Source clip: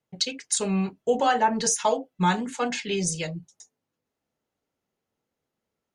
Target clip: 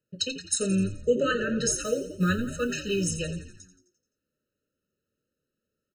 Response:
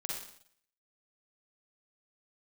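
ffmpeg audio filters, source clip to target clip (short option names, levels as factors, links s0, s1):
-filter_complex "[0:a]asettb=1/sr,asplit=3[s0][s1][s2];[s0]atrim=end=1.744[s3];[s1]atrim=start=1.74:end=3.1,asetpts=PTS-STARTPTS,afade=t=in:d=0.004:c=qsin,afade=t=out:st=1.356:d=0.004:c=qsin,acrusher=bits=7:mode=log:mix=0:aa=0.000001[s4];[s2]atrim=start=3.096[s5];[s3][s4]acrossfade=d=0.004:c1=hsin:c2=qsin[s6];[s6][s5]acrossfade=d=0.004:c1=qsin:c2=hsin,asplit=7[s7][s8][s9][s10][s11][s12][s13];[s8]adelay=86,afreqshift=-88,volume=0.251[s14];[s9]adelay=172,afreqshift=-176,volume=0.138[s15];[s10]adelay=258,afreqshift=-264,volume=0.0759[s16];[s11]adelay=344,afreqshift=-352,volume=0.0417[s17];[s12]adelay=430,afreqshift=-440,volume=0.0229[s18];[s13]adelay=516,afreqshift=-528,volume=0.0126[s19];[s7][s14][s15][s16][s17][s18][s19]amix=inputs=7:normalize=0,afftfilt=real='re*eq(mod(floor(b*sr/1024/620),2),0)':imag='im*eq(mod(floor(b*sr/1024/620),2),0)':win_size=1024:overlap=0.75"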